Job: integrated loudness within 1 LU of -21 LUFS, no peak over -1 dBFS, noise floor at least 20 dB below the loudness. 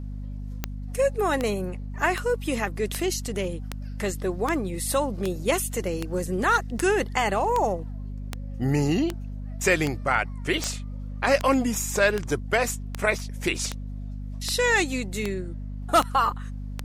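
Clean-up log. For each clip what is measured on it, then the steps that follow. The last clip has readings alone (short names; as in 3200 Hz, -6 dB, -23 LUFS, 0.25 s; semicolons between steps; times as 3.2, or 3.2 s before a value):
clicks 22; hum 50 Hz; harmonics up to 250 Hz; hum level -31 dBFS; loudness -25.5 LUFS; peak -8.0 dBFS; loudness target -21.0 LUFS
-> de-click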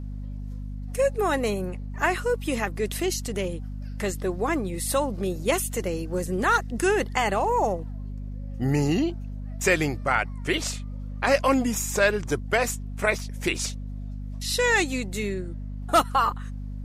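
clicks 0; hum 50 Hz; harmonics up to 250 Hz; hum level -31 dBFS
-> de-hum 50 Hz, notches 5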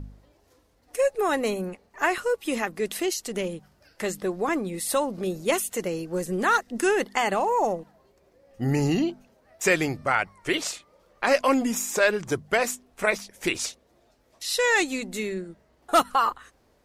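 hum none; loudness -26.0 LUFS; peak -8.0 dBFS; loudness target -21.0 LUFS
-> gain +5 dB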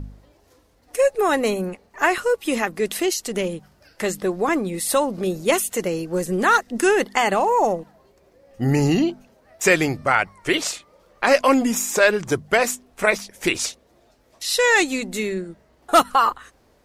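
loudness -21.0 LUFS; peak -3.0 dBFS; noise floor -59 dBFS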